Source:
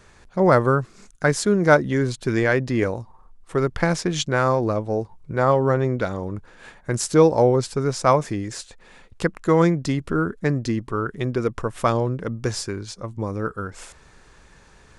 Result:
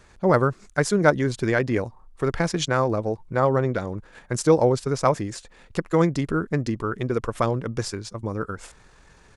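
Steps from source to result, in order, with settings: tempo 1.6×; trim -1.5 dB

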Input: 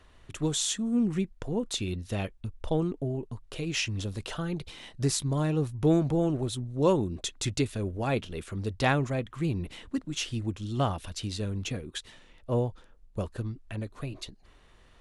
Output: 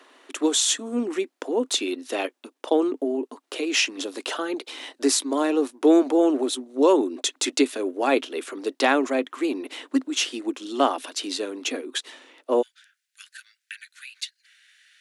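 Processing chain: Chebyshev high-pass 260 Hz, order 6, from 12.61 s 1.5 kHz; loudness maximiser +16.5 dB; trim -7 dB

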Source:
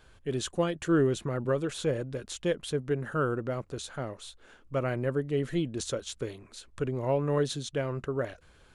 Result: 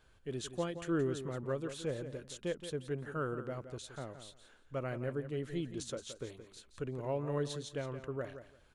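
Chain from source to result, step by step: feedback delay 172 ms, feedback 18%, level -11 dB; trim -8.5 dB

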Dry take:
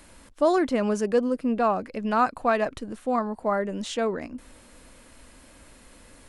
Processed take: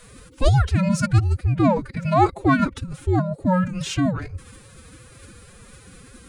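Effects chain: dynamic bell 150 Hz, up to -4 dB, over -42 dBFS, Q 1.8; frequency shift -300 Hz; formant-preserving pitch shift +10.5 st; trim +6 dB

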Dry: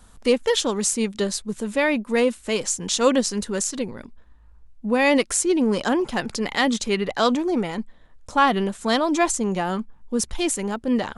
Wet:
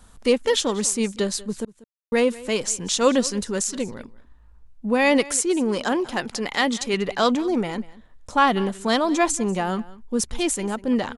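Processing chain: 1.65–2.12 s: mute; 5.25–6.94 s: bass shelf 200 Hz -7 dB; delay 191 ms -20 dB

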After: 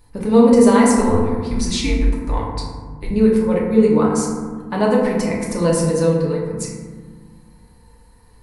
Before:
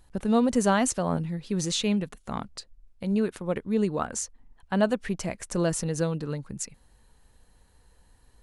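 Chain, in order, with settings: 0.93–3.11 s: frequency shift -160 Hz; rippled EQ curve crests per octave 0.9, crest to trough 7 dB; FDN reverb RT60 1.6 s, low-frequency decay 1.6×, high-frequency decay 0.35×, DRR -4.5 dB; trim +2.5 dB

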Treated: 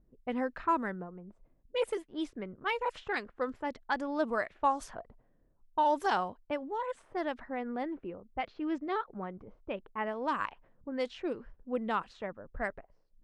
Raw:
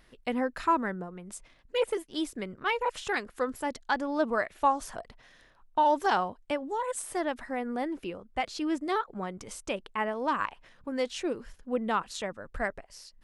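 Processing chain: level-controlled noise filter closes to 320 Hz, open at -24 dBFS; 7.83–10.07 s: distance through air 160 m; trim -3.5 dB

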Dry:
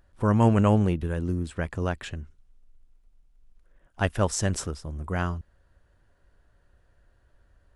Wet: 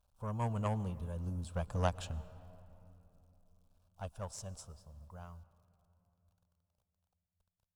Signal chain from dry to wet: Doppler pass-by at 1.96 s, 6 m/s, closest 3.1 m; word length cut 12-bit, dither none; static phaser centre 800 Hz, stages 4; Chebyshev shaper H 3 -18 dB, 6 -25 dB, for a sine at -17.5 dBFS; on a send: reverberation RT60 3.2 s, pre-delay 105 ms, DRR 18 dB; on the sum: trim +1 dB

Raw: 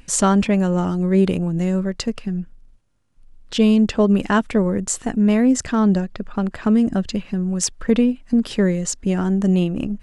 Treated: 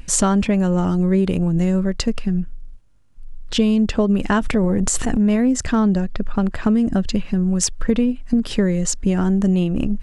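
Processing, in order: bass shelf 76 Hz +11 dB; 4.39–5.36 s: transient shaper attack -3 dB, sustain +11 dB; compression 4:1, threshold -17 dBFS, peak gain reduction 7 dB; trim +3 dB

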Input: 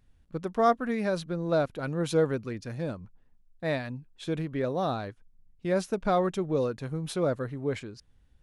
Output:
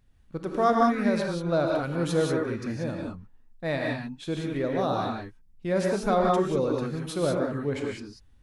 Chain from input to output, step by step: gated-style reverb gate 210 ms rising, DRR -1 dB

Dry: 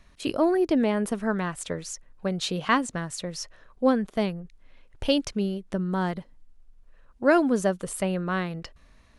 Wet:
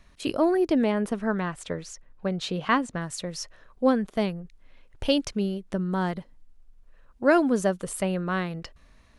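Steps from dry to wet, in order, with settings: 0.91–3.00 s: treble shelf 8.1 kHz -> 5.4 kHz -11.5 dB

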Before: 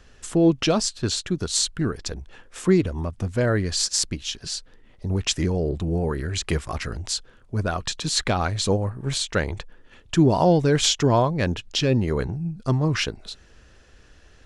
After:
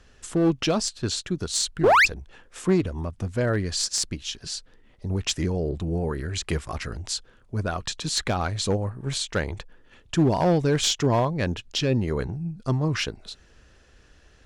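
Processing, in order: painted sound rise, 1.83–2.06 s, 320–2800 Hz -11 dBFS; one-sided clip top -15 dBFS; trim -2.5 dB

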